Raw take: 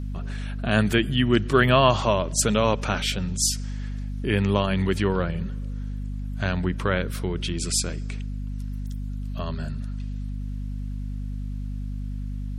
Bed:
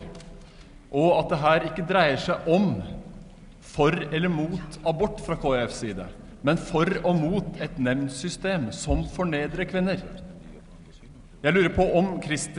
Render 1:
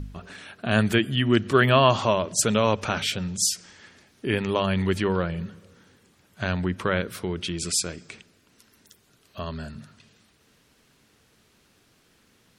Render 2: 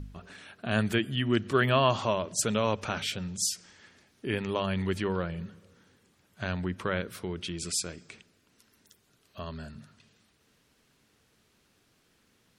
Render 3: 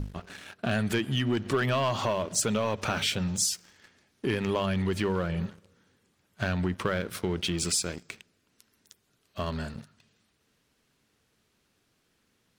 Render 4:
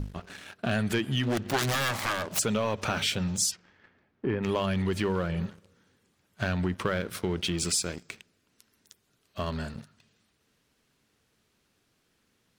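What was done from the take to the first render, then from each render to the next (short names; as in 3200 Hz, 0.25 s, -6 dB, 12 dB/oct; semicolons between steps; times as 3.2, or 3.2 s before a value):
de-hum 50 Hz, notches 5
gain -6 dB
sample leveller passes 2; compressor, threshold -24 dBFS, peak gain reduction 8.5 dB
1.23–2.39 self-modulated delay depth 0.75 ms; 3.5–4.42 LPF 2700 Hz -> 1400 Hz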